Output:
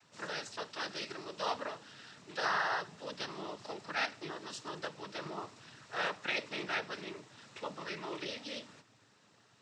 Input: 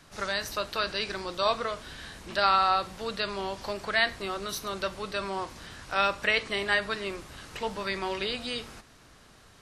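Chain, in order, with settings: noise vocoder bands 12; gain -9 dB

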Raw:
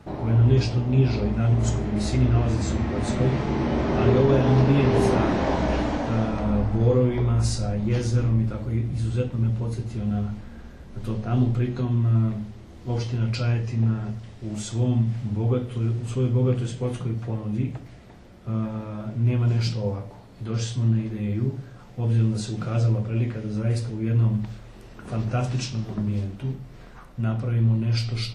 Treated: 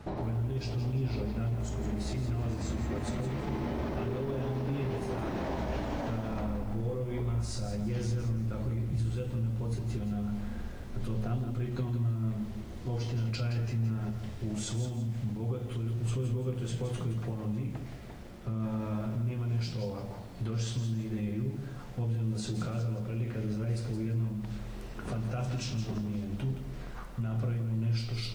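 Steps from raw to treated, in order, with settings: compressor, threshold -29 dBFS, peak gain reduction 14.5 dB; limiter -26.5 dBFS, peak gain reduction 6.5 dB; low shelf 130 Hz +3.5 dB; notches 50/100/150/200/250/300 Hz; lo-fi delay 0.169 s, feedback 35%, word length 9-bit, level -9 dB

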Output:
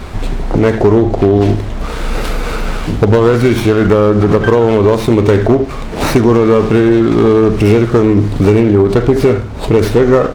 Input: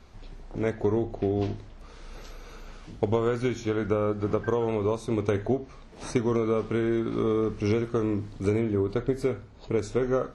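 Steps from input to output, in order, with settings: in parallel at +2 dB: compressor, threshold -37 dBFS, peak gain reduction 16.5 dB; on the sum: AM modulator 210 Hz, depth 15%; hard clip -18 dBFS, distortion -19 dB; on a send: echo 76 ms -18 dB; on the sum: maximiser +22.5 dB; running maximum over 5 samples; gain -1 dB

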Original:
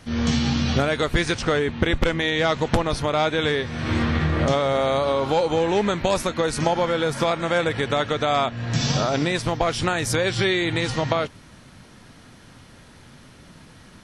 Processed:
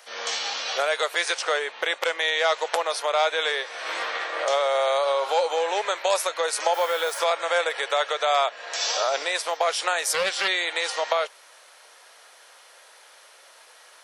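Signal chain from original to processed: steep high-pass 500 Hz 36 dB/oct; high shelf 9200 Hz +9 dB; 6.73–7.18 added noise blue -44 dBFS; 10.03–10.48 Doppler distortion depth 0.17 ms

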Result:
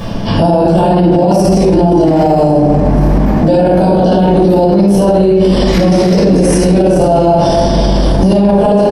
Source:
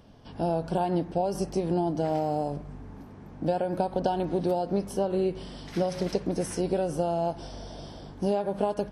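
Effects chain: shoebox room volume 580 m³, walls mixed, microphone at 5.8 m; reverse; upward compressor, threshold -29 dBFS; reverse; feedback echo 0.529 s, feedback 58%, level -21 dB; maximiser +22 dB; gain -1 dB

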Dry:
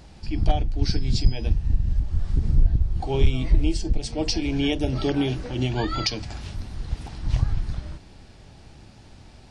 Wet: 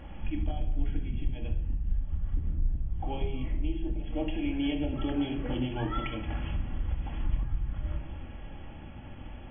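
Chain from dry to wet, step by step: compressor 6:1, threshold -32 dBFS, peak gain reduction 19 dB; brick-wall FIR low-pass 3400 Hz; reverb RT60 0.75 s, pre-delay 4 ms, DRR 0.5 dB

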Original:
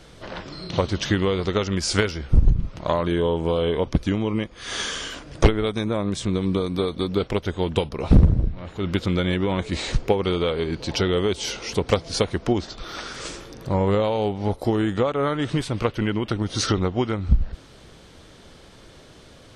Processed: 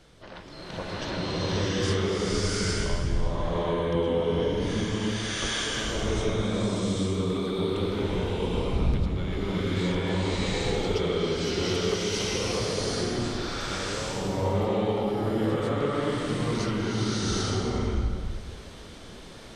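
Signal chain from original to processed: compressor 3:1, threshold -28 dBFS, peak gain reduction 13.5 dB; bloom reverb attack 0.8 s, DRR -11.5 dB; gain -8.5 dB

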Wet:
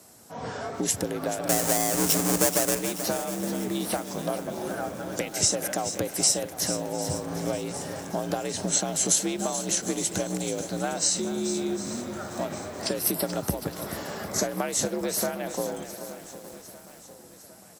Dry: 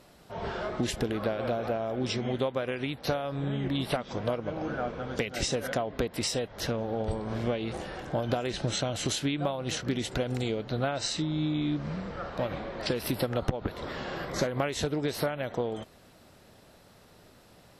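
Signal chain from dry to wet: 1.49–2.75 half-waves squared off; frequency shift +56 Hz; resonant high shelf 5100 Hz +12.5 dB, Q 1.5; feedback echo 0.755 s, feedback 58%, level -16 dB; lo-fi delay 0.432 s, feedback 55%, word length 7-bit, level -10 dB

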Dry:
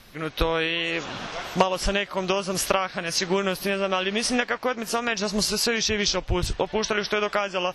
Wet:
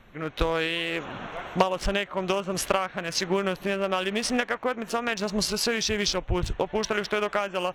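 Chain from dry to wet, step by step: Wiener smoothing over 9 samples; gain -1.5 dB

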